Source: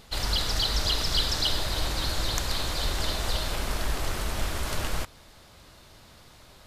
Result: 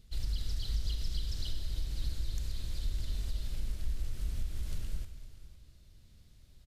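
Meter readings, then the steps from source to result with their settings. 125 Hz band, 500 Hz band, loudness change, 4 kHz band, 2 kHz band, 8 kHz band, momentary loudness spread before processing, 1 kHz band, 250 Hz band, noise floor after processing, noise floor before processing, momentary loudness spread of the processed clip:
−5.0 dB, −22.5 dB, −11.5 dB, −19.0 dB, −23.0 dB, −17.5 dB, 7 LU, −28.5 dB, −14.0 dB, −58 dBFS, −53 dBFS, 7 LU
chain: guitar amp tone stack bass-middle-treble 10-0-1
downward compressor, threshold −34 dBFS, peak gain reduction 7.5 dB
single-tap delay 507 ms −16.5 dB
four-comb reverb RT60 1.5 s, combs from 29 ms, DRR 8.5 dB
level +5.5 dB

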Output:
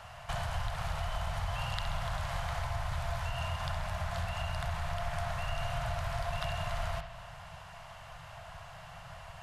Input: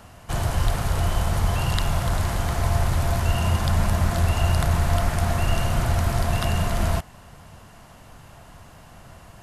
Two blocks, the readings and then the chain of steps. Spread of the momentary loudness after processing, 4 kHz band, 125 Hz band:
13 LU, −9.0 dB, −15.0 dB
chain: drawn EQ curve 160 Hz 0 dB, 270 Hz −29 dB, 630 Hz +5 dB, 3,200 Hz +6 dB, 13,000 Hz −6 dB
downward compressor 5 to 1, threshold −28 dBFS, peak gain reduction 12.5 dB
on a send: bucket-brigade delay 66 ms, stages 2,048, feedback 62%, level −9 dB
on the sum: level −5 dB

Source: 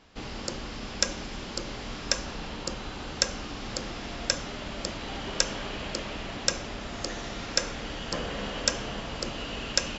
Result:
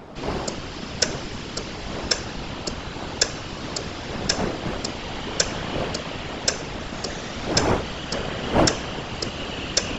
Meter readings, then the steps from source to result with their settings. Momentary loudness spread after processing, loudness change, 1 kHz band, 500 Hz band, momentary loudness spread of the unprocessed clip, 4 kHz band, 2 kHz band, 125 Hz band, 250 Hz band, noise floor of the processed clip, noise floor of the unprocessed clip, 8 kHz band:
10 LU, +5.5 dB, +8.0 dB, +8.5 dB, 9 LU, +4.5 dB, +5.0 dB, +9.0 dB, +8.5 dB, −34 dBFS, −39 dBFS, can't be measured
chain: wind on the microphone 610 Hz −36 dBFS
random phases in short frames
level +4.5 dB

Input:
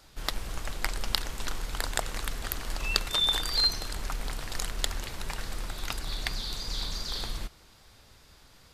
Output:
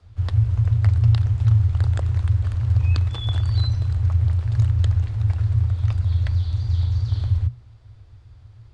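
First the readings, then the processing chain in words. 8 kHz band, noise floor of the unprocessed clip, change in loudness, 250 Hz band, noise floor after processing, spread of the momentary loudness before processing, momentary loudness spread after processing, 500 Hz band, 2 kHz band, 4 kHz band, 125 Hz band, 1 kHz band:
below −15 dB, −56 dBFS, +10.5 dB, +7.0 dB, −47 dBFS, 13 LU, 5 LU, −2.5 dB, −7.5 dB, −11.0 dB, +25.5 dB, −5.0 dB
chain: RIAA equalisation playback
frequency shifter −120 Hz
downsampling to 22,050 Hz
level −4.5 dB

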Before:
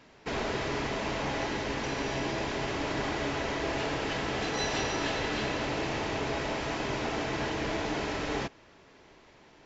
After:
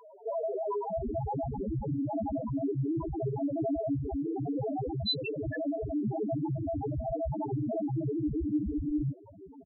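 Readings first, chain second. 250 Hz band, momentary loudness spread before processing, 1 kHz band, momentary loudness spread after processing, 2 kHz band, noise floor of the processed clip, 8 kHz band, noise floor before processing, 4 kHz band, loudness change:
+4.0 dB, 2 LU, −5.0 dB, 3 LU, −17.5 dB, −52 dBFS, can't be measured, −57 dBFS, −5.5 dB, −1.0 dB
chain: in parallel at +1 dB: downward compressor 10 to 1, threshold −45 dBFS, peak gain reduction 18 dB
on the sum: three-band delay without the direct sound mids, highs, lows 480/640 ms, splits 390/1,600 Hz
harmonic generator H 5 −9 dB, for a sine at −18.5 dBFS
spectral peaks only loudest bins 1
level +8 dB

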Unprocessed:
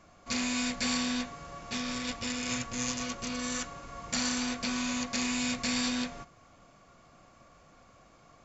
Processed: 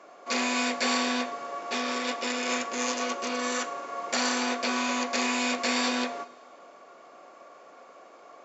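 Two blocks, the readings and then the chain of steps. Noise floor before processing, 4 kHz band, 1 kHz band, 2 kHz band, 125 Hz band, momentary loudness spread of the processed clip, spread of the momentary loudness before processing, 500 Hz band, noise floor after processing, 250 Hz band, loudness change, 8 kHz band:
−59 dBFS, +3.0 dB, +10.0 dB, +6.5 dB, below −10 dB, 8 LU, 8 LU, +10.5 dB, −52 dBFS, +1.0 dB, +4.0 dB, can't be measured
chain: high-pass filter 390 Hz 24 dB per octave
spectral tilt −3 dB per octave
coupled-rooms reverb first 0.47 s, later 2 s, from −16 dB, DRR 13 dB
level +9 dB

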